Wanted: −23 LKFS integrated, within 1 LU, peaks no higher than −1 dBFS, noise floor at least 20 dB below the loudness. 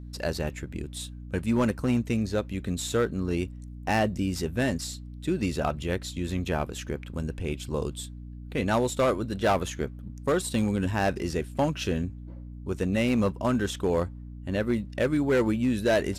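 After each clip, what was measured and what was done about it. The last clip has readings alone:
share of clipped samples 0.9%; peaks flattened at −17.5 dBFS; mains hum 60 Hz; hum harmonics up to 300 Hz; level of the hum −38 dBFS; integrated loudness −28.5 LKFS; sample peak −17.5 dBFS; target loudness −23.0 LKFS
→ clipped peaks rebuilt −17.5 dBFS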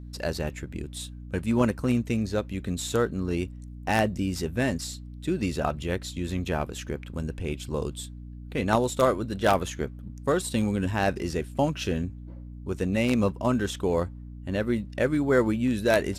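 share of clipped samples 0.0%; mains hum 60 Hz; hum harmonics up to 300 Hz; level of the hum −38 dBFS
→ hum removal 60 Hz, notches 5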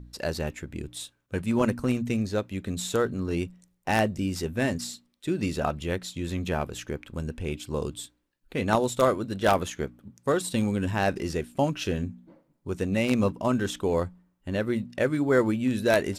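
mains hum none found; integrated loudness −28.0 LKFS; sample peak −8.0 dBFS; target loudness −23.0 LKFS
→ level +5 dB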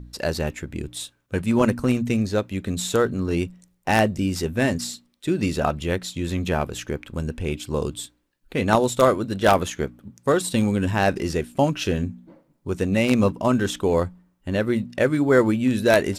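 integrated loudness −23.0 LKFS; sample peak −3.0 dBFS; background noise floor −67 dBFS

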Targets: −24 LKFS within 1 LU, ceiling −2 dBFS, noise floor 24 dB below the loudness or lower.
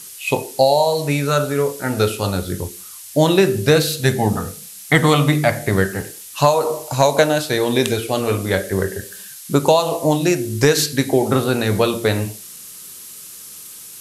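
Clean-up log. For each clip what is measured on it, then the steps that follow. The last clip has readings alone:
background noise floor −37 dBFS; target noise floor −42 dBFS; integrated loudness −18.0 LKFS; sample peak −2.0 dBFS; target loudness −24.0 LKFS
→ noise reduction from a noise print 6 dB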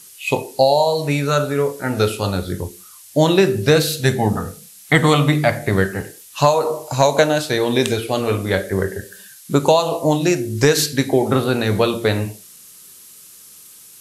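background noise floor −43 dBFS; integrated loudness −18.0 LKFS; sample peak −2.0 dBFS; target loudness −24.0 LKFS
→ level −6 dB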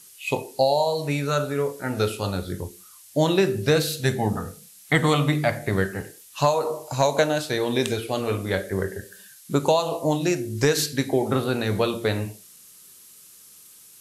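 integrated loudness −24.0 LKFS; sample peak −8.0 dBFS; background noise floor −49 dBFS

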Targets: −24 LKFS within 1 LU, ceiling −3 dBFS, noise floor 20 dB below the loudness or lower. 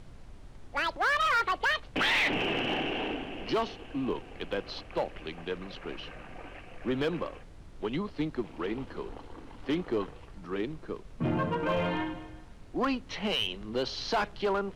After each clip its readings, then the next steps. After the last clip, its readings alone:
share of clipped samples 0.9%; peaks flattened at −22.5 dBFS; background noise floor −49 dBFS; target noise floor −52 dBFS; integrated loudness −31.5 LKFS; sample peak −22.5 dBFS; target loudness −24.0 LKFS
→ clipped peaks rebuilt −22.5 dBFS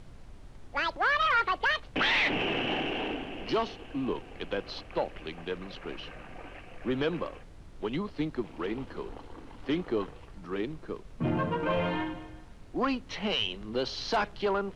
share of clipped samples 0.0%; background noise floor −49 dBFS; target noise floor −51 dBFS
→ noise reduction from a noise print 6 dB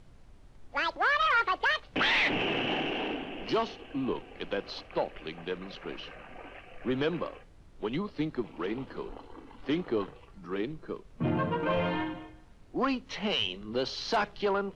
background noise floor −54 dBFS; integrated loudness −31.0 LKFS; sample peak −17.5 dBFS; target loudness −24.0 LKFS
→ level +7 dB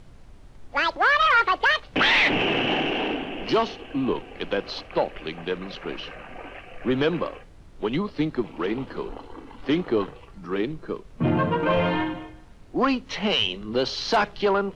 integrated loudness −24.0 LKFS; sample peak −10.5 dBFS; background noise floor −47 dBFS

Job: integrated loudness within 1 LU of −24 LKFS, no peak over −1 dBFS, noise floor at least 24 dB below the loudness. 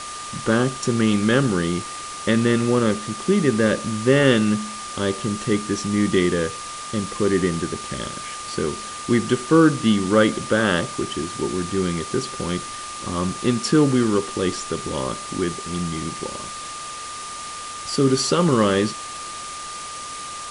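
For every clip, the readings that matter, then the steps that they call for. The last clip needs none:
interfering tone 1,200 Hz; level of the tone −33 dBFS; background noise floor −33 dBFS; target noise floor −46 dBFS; integrated loudness −22.0 LKFS; sample peak −3.0 dBFS; target loudness −24.0 LKFS
→ notch filter 1,200 Hz, Q 30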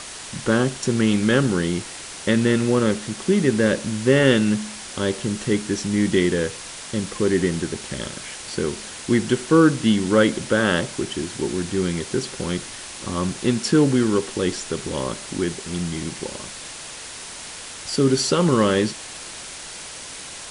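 interfering tone none found; background noise floor −36 dBFS; target noise floor −46 dBFS
→ broadband denoise 10 dB, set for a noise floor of −36 dBFS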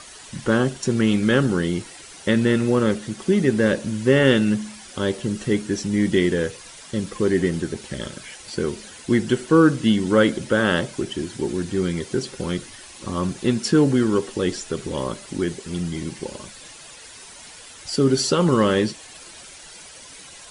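background noise floor −43 dBFS; target noise floor −46 dBFS
→ broadband denoise 6 dB, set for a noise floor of −43 dBFS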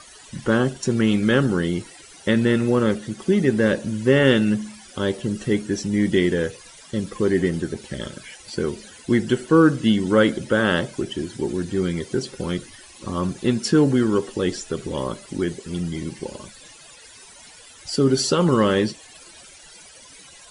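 background noise floor −46 dBFS; integrated loudness −21.5 LKFS; sample peak −3.5 dBFS; target loudness −24.0 LKFS
→ level −2.5 dB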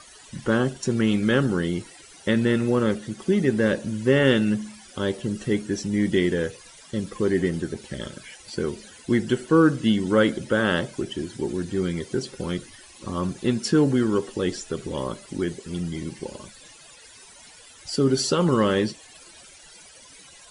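integrated loudness −24.0 LKFS; sample peak −6.0 dBFS; background noise floor −49 dBFS

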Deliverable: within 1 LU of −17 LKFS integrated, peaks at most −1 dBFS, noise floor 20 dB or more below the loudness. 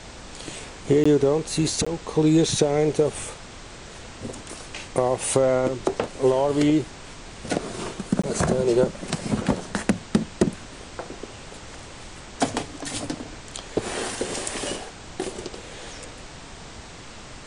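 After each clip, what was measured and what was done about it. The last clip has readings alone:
number of dropouts 3; longest dropout 15 ms; background noise floor −42 dBFS; target noise floor −44 dBFS; integrated loudness −24.0 LKFS; sample peak −5.0 dBFS; target loudness −17.0 LKFS
→ repair the gap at 0:01.04/0:01.85/0:08.22, 15 ms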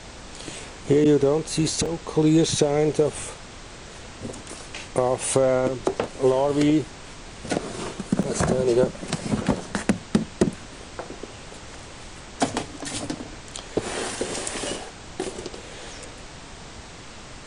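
number of dropouts 0; background noise floor −42 dBFS; target noise floor −44 dBFS
→ noise reduction from a noise print 6 dB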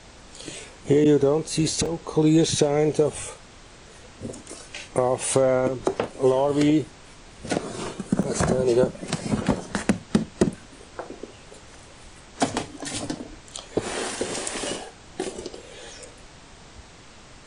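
background noise floor −47 dBFS; integrated loudness −24.0 LKFS; sample peak −5.0 dBFS; target loudness −17.0 LKFS
→ level +7 dB
brickwall limiter −1 dBFS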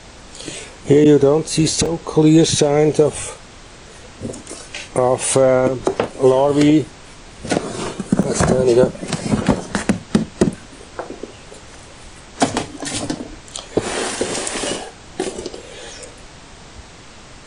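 integrated loudness −17.0 LKFS; sample peak −1.0 dBFS; background noise floor −40 dBFS

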